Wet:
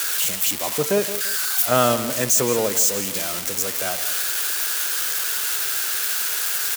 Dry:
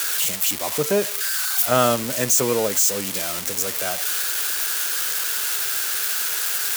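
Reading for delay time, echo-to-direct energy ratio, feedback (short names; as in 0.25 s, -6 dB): 0.17 s, -12.5 dB, 29%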